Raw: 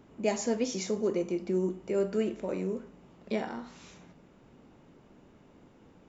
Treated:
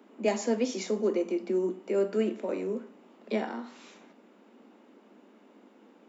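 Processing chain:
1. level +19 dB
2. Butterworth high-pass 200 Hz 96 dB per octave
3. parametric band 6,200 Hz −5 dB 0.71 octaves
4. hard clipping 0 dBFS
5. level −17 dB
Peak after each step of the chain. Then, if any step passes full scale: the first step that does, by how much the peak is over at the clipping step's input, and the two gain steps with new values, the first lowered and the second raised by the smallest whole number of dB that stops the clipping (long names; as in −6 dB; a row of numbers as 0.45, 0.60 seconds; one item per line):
+4.5, +3.5, +3.5, 0.0, −17.0 dBFS
step 1, 3.5 dB
step 1 +15 dB, step 5 −13 dB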